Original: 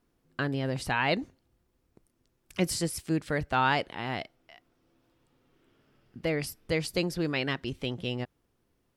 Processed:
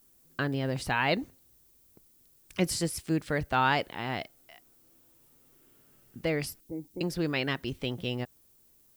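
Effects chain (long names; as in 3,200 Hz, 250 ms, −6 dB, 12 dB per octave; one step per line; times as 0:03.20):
0:06.60–0:07.01: formant resonators in series u
background noise violet −63 dBFS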